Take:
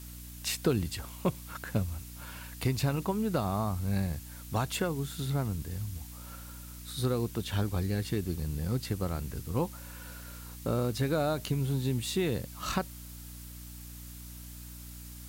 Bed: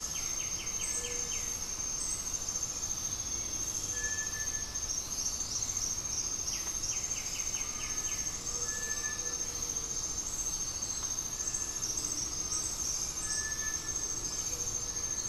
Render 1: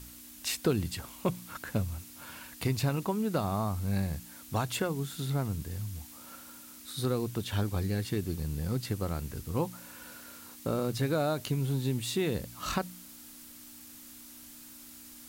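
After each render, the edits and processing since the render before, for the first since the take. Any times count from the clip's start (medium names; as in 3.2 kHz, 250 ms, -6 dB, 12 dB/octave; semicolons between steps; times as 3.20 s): de-hum 60 Hz, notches 3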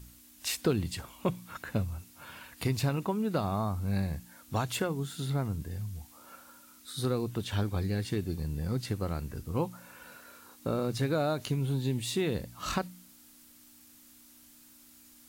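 noise print and reduce 7 dB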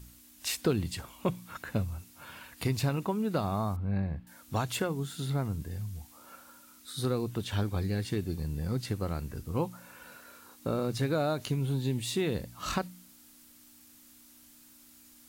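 3.76–4.27 s: distance through air 450 m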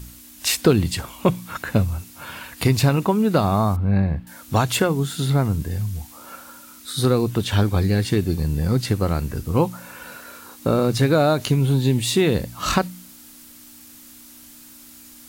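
trim +12 dB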